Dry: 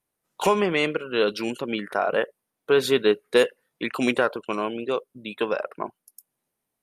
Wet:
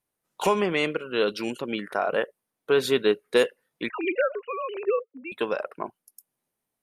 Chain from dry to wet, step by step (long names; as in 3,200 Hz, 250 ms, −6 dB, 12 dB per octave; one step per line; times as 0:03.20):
0:03.89–0:05.32: three sine waves on the formant tracks
level −2 dB